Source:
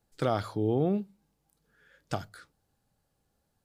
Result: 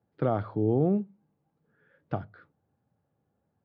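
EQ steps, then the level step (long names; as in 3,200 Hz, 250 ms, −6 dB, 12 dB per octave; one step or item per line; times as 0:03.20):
high-pass filter 88 Hz 24 dB per octave
high-frequency loss of the air 150 metres
head-to-tape spacing loss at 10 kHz 45 dB
+4.0 dB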